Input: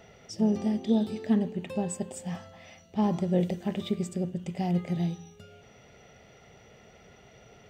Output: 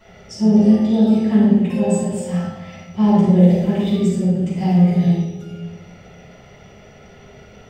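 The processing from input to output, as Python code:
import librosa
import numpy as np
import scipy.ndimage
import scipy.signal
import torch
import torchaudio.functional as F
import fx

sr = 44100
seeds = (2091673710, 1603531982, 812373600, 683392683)

y = fx.room_shoebox(x, sr, seeds[0], volume_m3=530.0, walls='mixed', distance_m=9.5)
y = y * 10.0 ** (-7.0 / 20.0)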